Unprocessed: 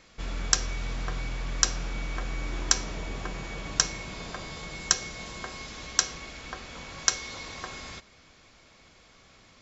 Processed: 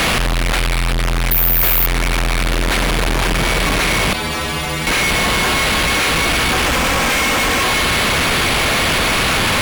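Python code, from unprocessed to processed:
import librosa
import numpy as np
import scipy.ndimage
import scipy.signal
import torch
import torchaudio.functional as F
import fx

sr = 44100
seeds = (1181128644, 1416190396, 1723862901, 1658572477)

y = fx.delta_mod(x, sr, bps=16000, step_db=-22.5)
y = fx.comb(y, sr, ms=3.8, depth=0.48, at=(6.66, 7.62))
y = fx.fuzz(y, sr, gain_db=49.0, gate_db=-54.0)
y = fx.resample_bad(y, sr, factor=3, down='none', up='zero_stuff', at=(1.31, 1.86))
y = fx.stiff_resonator(y, sr, f0_hz=75.0, decay_s=0.43, stiffness=0.008, at=(4.13, 4.87))
y = fx.env_flatten(y, sr, amount_pct=50)
y = y * librosa.db_to_amplitude(-4.5)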